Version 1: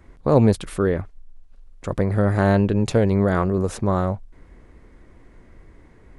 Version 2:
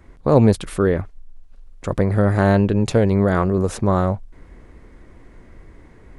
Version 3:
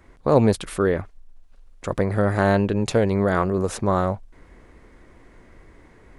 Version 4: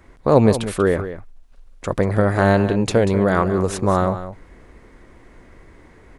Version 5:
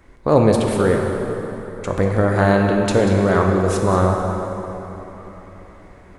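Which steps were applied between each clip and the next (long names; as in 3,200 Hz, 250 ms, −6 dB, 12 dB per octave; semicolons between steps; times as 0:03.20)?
speech leveller 2 s; level +2 dB
low-shelf EQ 310 Hz −6.5 dB
single-tap delay 189 ms −12 dB; level +3 dB
dense smooth reverb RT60 3.8 s, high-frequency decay 0.65×, DRR 1.5 dB; level −1 dB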